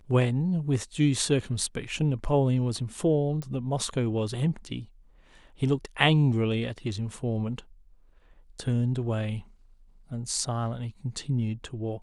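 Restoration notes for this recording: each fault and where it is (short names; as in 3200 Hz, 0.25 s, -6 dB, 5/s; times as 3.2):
3.42 pop -23 dBFS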